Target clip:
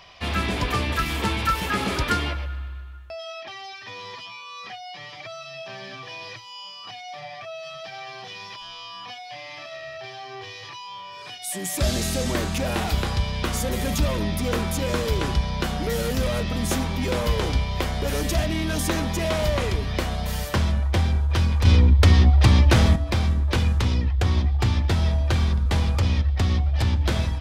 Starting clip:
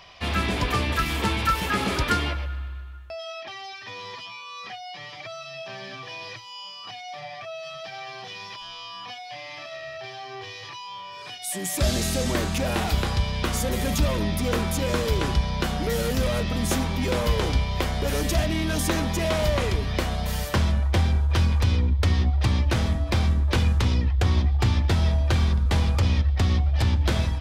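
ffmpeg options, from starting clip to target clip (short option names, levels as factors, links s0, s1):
-filter_complex "[0:a]asettb=1/sr,asplit=3[s0][s1][s2];[s0]atrim=end=21.654[s3];[s1]atrim=start=21.65:end=22.96,asetpts=PTS-STARTPTS,afade=t=in:d=0.004:c=qsin,afade=t=out:st=1.306:d=0.004:c=qsin,acontrast=84[s4];[s2]atrim=start=22.956[s5];[s3][s4]acrossfade=d=0.004:c1=hsin:c2=qsin[s6];[s6][s5]acrossfade=d=0.004:c1=qsin:c2=hsin"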